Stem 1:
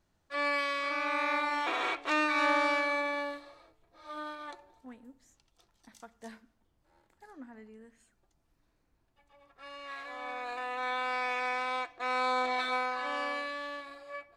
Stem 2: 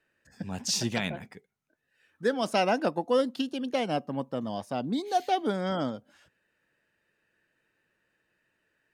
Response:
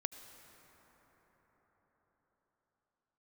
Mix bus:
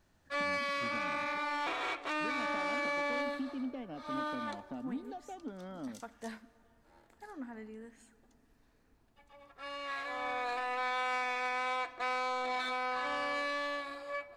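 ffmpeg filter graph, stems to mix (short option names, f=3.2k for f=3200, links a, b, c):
-filter_complex "[0:a]alimiter=level_in=5.5dB:limit=-24dB:level=0:latency=1:release=273,volume=-5.5dB,volume=2dB,asplit=2[a][b];[b]volume=-9.5dB[c];[1:a]acompressor=threshold=-36dB:ratio=6,lowpass=2.7k,equalizer=f=260:t=o:w=0.39:g=12,volume=-8dB[d];[2:a]atrim=start_sample=2205[e];[c][e]afir=irnorm=-1:irlink=0[f];[a][d][f]amix=inputs=3:normalize=0,asoftclip=type=tanh:threshold=-28.5dB"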